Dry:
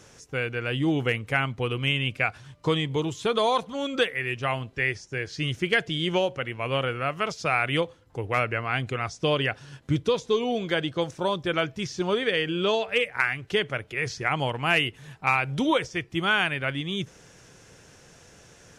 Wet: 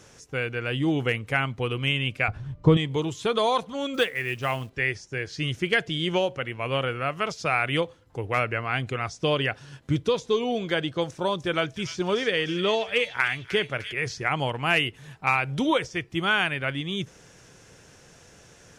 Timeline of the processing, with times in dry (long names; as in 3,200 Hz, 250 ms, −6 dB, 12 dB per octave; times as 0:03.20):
0:02.28–0:02.77: spectral tilt −4 dB per octave
0:03.94–0:04.70: log-companded quantiser 6 bits
0:11.08–0:13.93: delay with a high-pass on its return 301 ms, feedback 49%, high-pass 2,700 Hz, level −6.5 dB